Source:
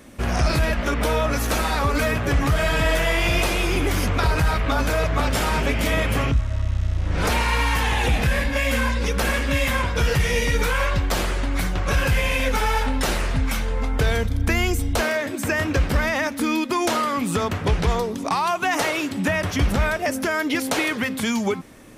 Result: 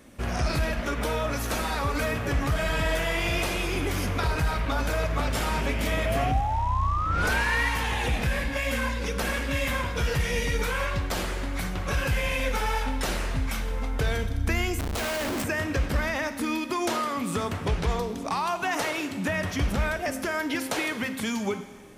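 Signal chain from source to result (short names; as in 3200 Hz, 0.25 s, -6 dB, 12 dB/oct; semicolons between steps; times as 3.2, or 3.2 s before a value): 6.05–7.69 painted sound rise 630–2000 Hz -23 dBFS; Schroeder reverb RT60 1.5 s, combs from 33 ms, DRR 10.5 dB; 14.79–15.43 Schmitt trigger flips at -33 dBFS; gain -6 dB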